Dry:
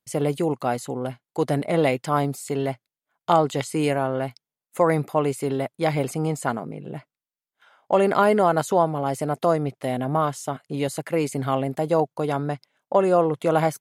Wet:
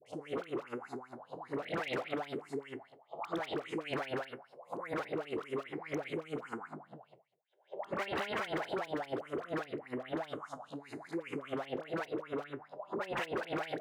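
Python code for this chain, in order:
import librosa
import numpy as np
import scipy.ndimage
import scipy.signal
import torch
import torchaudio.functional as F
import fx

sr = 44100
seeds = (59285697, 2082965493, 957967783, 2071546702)

y = fx.spec_blur(x, sr, span_ms=283.0)
y = fx.peak_eq(y, sr, hz=250.0, db=2.5, octaves=2.4, at=(6.74, 7.97))
y = fx.env_phaser(y, sr, low_hz=210.0, high_hz=1200.0, full_db=-22.0)
y = fx.echo_feedback(y, sr, ms=147, feedback_pct=27, wet_db=-19.0)
y = fx.wah_lfo(y, sr, hz=5.0, low_hz=340.0, high_hz=3900.0, q=4.2)
y = fx.high_shelf(y, sr, hz=6900.0, db=9.0, at=(4.02, 4.88))
y = 10.0 ** (-35.0 / 20.0) * (np.abs((y / 10.0 ** (-35.0 / 20.0) + 3.0) % 4.0 - 2.0) - 1.0)
y = scipy.signal.sosfilt(scipy.signal.butter(2, 89.0, 'highpass', fs=sr, output='sos'), y)
y = fx.dispersion(y, sr, late='highs', ms=62.0, hz=980.0)
y = y * librosa.db_to_amplitude(5.5)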